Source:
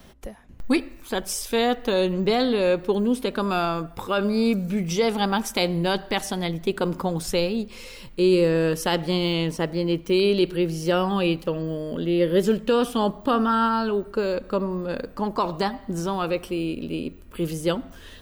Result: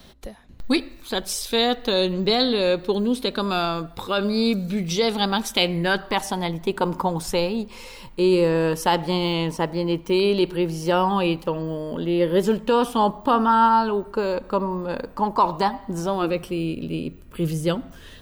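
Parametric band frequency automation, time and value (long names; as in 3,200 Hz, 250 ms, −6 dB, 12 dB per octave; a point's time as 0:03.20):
parametric band +10.5 dB 0.44 octaves
0:05.47 4,000 Hz
0:06.20 920 Hz
0:16.01 920 Hz
0:16.44 140 Hz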